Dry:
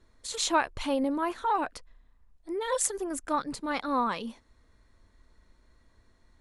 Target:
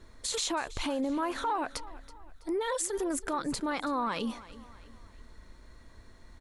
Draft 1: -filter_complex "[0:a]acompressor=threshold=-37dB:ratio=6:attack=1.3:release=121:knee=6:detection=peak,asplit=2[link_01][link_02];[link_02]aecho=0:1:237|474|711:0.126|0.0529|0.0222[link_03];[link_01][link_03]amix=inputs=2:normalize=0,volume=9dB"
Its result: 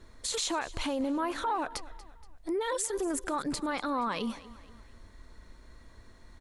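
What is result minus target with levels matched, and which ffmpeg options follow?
echo 90 ms early
-filter_complex "[0:a]acompressor=threshold=-37dB:ratio=6:attack=1.3:release=121:knee=6:detection=peak,asplit=2[link_01][link_02];[link_02]aecho=0:1:327|654|981:0.126|0.0529|0.0222[link_03];[link_01][link_03]amix=inputs=2:normalize=0,volume=9dB"

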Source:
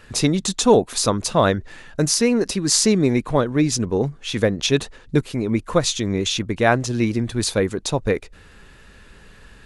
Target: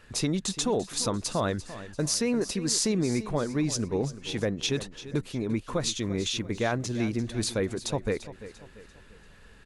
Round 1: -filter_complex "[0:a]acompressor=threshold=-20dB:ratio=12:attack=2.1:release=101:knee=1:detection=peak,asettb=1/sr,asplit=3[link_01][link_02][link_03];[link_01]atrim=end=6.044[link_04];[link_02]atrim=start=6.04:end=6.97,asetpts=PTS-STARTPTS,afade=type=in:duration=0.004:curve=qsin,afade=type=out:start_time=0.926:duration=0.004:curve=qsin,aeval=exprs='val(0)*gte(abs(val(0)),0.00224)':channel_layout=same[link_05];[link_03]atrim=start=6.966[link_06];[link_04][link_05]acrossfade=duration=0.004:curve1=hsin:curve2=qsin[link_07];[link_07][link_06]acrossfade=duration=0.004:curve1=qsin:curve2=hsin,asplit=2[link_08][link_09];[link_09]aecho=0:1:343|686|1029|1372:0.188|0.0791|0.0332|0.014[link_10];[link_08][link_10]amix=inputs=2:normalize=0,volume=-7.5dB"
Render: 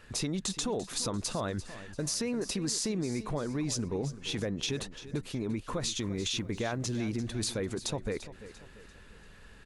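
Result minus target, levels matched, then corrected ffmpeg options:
downward compressor: peak gain reduction +6.5 dB
-filter_complex "[0:a]acompressor=threshold=-13dB:ratio=12:attack=2.1:release=101:knee=1:detection=peak,asettb=1/sr,asplit=3[link_01][link_02][link_03];[link_01]atrim=end=6.044[link_04];[link_02]atrim=start=6.04:end=6.97,asetpts=PTS-STARTPTS,afade=type=in:duration=0.004:curve=qsin,afade=type=out:start_time=0.926:duration=0.004:curve=qsin,aeval=exprs='val(0)*gte(abs(val(0)),0.00224)':channel_layout=same[link_05];[link_03]atrim=start=6.966[link_06];[link_04][link_05]acrossfade=duration=0.004:curve1=hsin:curve2=qsin[link_07];[link_07][link_06]acrossfade=duration=0.004:curve1=qsin:curve2=hsin,asplit=2[link_08][link_09];[link_09]aecho=0:1:343|686|1029|1372:0.188|0.0791|0.0332|0.014[link_10];[link_08][link_10]amix=inputs=2:normalize=0,volume=-7.5dB"

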